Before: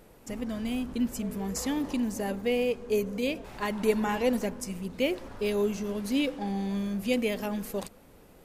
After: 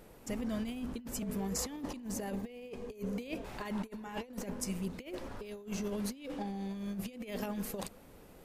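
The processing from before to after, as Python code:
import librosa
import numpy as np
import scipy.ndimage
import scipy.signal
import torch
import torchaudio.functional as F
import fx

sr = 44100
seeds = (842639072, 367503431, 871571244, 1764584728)

y = fx.notch(x, sr, hz=1400.0, q=5.6, at=(2.33, 2.97))
y = fx.over_compress(y, sr, threshold_db=-33.0, ratio=-0.5)
y = y * 10.0 ** (-5.0 / 20.0)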